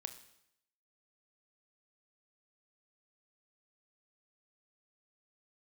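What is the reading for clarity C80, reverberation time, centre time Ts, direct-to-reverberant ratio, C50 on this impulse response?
14.0 dB, 0.75 s, 10 ms, 8.5 dB, 12.0 dB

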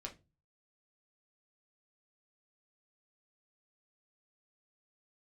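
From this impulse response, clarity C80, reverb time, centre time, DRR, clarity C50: 23.5 dB, 0.25 s, 11 ms, 0.0 dB, 14.5 dB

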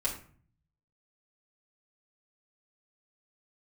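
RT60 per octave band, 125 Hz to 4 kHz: 1.0 s, 0.70 s, 0.50 s, 0.45 s, 0.45 s, 0.30 s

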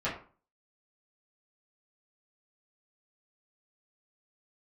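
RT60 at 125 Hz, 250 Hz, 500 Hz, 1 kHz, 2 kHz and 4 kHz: 0.45 s, 0.45 s, 0.40 s, 0.40 s, 0.35 s, 0.25 s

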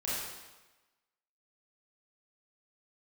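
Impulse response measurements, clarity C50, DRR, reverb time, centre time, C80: -2.5 dB, -9.0 dB, 1.1 s, 94 ms, 1.0 dB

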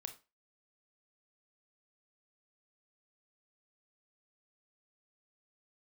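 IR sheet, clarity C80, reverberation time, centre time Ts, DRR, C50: 19.5 dB, 0.30 s, 9 ms, 6.5 dB, 13.0 dB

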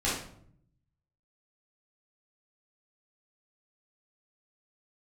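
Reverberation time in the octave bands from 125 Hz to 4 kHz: 1.2 s, 0.95 s, 0.70 s, 0.60 s, 0.50 s, 0.45 s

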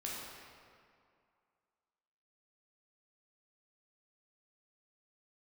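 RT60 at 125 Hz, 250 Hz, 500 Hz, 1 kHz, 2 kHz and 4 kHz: 2.1 s, 2.2 s, 2.2 s, 2.4 s, 1.9 s, 1.5 s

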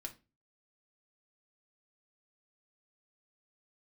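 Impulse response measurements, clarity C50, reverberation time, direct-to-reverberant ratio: 15.0 dB, 0.30 s, 2.5 dB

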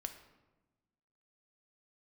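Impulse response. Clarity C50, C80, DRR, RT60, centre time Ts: 10.0 dB, 12.0 dB, 6.5 dB, 1.1 s, 14 ms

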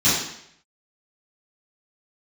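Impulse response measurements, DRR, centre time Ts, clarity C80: -14.5 dB, 61 ms, 4.5 dB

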